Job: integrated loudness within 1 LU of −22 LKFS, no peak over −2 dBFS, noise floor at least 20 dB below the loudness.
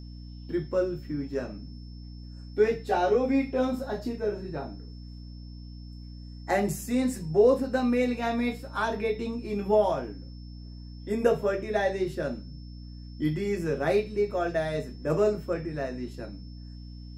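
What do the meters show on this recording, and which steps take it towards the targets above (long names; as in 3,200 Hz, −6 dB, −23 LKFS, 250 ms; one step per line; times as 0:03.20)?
mains hum 60 Hz; hum harmonics up to 300 Hz; level of the hum −40 dBFS; interfering tone 5,300 Hz; level of the tone −56 dBFS; integrated loudness −28.0 LKFS; sample peak −11.0 dBFS; target loudness −22.0 LKFS
→ hum removal 60 Hz, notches 5
notch filter 5,300 Hz, Q 30
level +6 dB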